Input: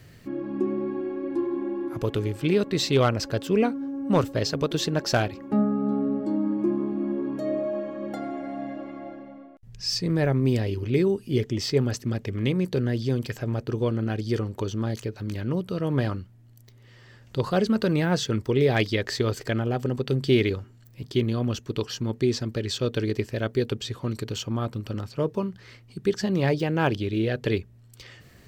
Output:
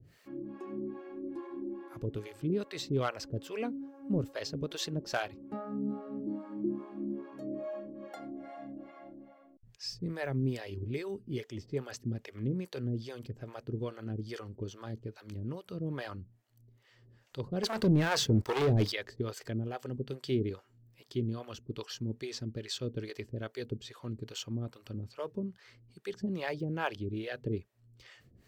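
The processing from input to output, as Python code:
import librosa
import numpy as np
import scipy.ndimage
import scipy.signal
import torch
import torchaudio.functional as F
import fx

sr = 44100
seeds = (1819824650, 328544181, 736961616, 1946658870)

y = fx.leveller(x, sr, passes=3, at=(17.63, 18.92))
y = fx.harmonic_tremolo(y, sr, hz=2.4, depth_pct=100, crossover_hz=480.0)
y = y * 10.0 ** (-6.5 / 20.0)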